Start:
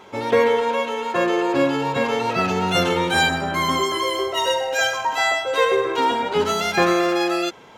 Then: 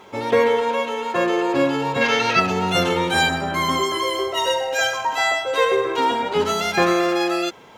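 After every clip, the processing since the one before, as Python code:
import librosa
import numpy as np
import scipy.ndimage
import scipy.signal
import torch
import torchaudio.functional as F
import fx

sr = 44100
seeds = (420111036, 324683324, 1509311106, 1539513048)

y = fx.quant_dither(x, sr, seeds[0], bits=12, dither='triangular')
y = fx.spec_box(y, sr, start_s=2.02, length_s=0.38, low_hz=1300.0, high_hz=6900.0, gain_db=9)
y = fx.notch(y, sr, hz=1500.0, q=23.0)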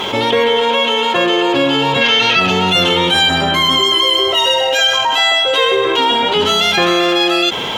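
y = fx.peak_eq(x, sr, hz=3200.0, db=14.0, octaves=0.5)
y = fx.env_flatten(y, sr, amount_pct=70)
y = y * 10.0 ** (-1.0 / 20.0)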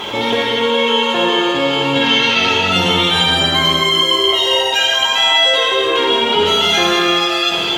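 y = fx.rev_gated(x, sr, seeds[1], gate_ms=350, shape='flat', drr_db=-2.5)
y = y * 10.0 ** (-5.0 / 20.0)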